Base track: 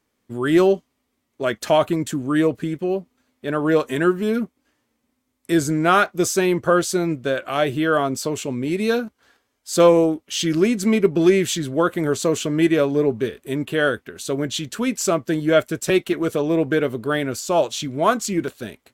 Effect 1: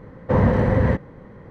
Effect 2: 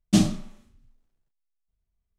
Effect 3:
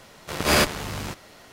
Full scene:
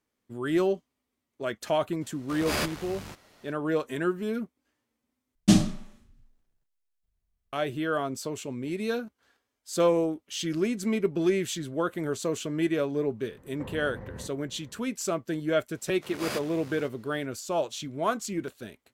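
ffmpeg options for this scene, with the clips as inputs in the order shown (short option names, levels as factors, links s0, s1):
-filter_complex "[3:a]asplit=2[s0][s1];[0:a]volume=0.335[s2];[2:a]equalizer=f=1700:t=o:w=0.34:g=2.5[s3];[1:a]acompressor=threshold=0.0631:ratio=6:attack=3.2:release=140:knee=1:detection=peak[s4];[s1]highpass=f=100:w=0.5412,highpass=f=100:w=1.3066[s5];[s2]asplit=2[s6][s7];[s6]atrim=end=5.354[s8];[s3]atrim=end=2.18[s9];[s7]atrim=start=7.526[s10];[s0]atrim=end=1.52,asetpts=PTS-STARTPTS,volume=0.316,afade=t=in:d=0.004:c=hsin,afade=t=out:st=1.516:d=0.004:c=hsin,adelay=2010[s11];[s4]atrim=end=1.5,asetpts=PTS-STARTPTS,volume=0.211,afade=t=in:d=0.004:c=hsin,afade=t=out:st=1.496:d=0.004:c=hsin,adelay=13310[s12];[s5]atrim=end=1.52,asetpts=PTS-STARTPTS,volume=0.168,afade=t=in:d=0.004:c=hsin,afade=t=out:st=1.516:d=0.004:c=hsin,adelay=15740[s13];[s8][s9]acrossfade=d=0.004:c1=hsin:c2=hsin[s14];[s14][s10]acrossfade=d=0.004:c1=hsin:c2=hsin[s15];[s15][s11][s12][s13]amix=inputs=4:normalize=0"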